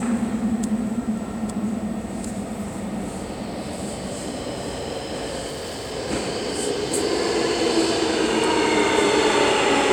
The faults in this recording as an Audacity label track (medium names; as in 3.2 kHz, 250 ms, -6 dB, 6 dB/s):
5.470000	5.930000	clipped -27.5 dBFS